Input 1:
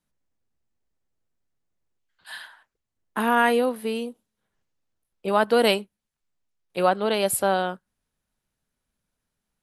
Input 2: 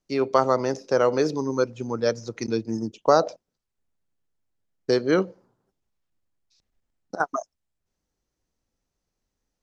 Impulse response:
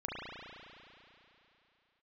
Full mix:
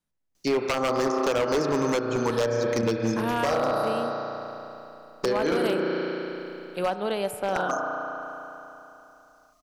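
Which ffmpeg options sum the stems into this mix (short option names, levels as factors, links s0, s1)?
-filter_complex "[0:a]volume=0.531,asplit=3[s0][s1][s2];[s1]volume=0.2[s3];[1:a]highshelf=f=2200:g=12,adelay=350,volume=1.33,asplit=2[s4][s5];[s5]volume=0.473[s6];[s2]apad=whole_len=439788[s7];[s4][s7]sidechaincompress=threshold=0.00562:ratio=4:attack=16:release=454[s8];[2:a]atrim=start_sample=2205[s9];[s3][s6]amix=inputs=2:normalize=0[s10];[s10][s9]afir=irnorm=-1:irlink=0[s11];[s0][s8][s11]amix=inputs=3:normalize=0,acrossover=split=1400|2800[s12][s13][s14];[s12]acompressor=threshold=0.1:ratio=4[s15];[s13]acompressor=threshold=0.01:ratio=4[s16];[s14]acompressor=threshold=0.00891:ratio=4[s17];[s15][s16][s17]amix=inputs=3:normalize=0,aeval=exprs='0.141*(abs(mod(val(0)/0.141+3,4)-2)-1)':c=same"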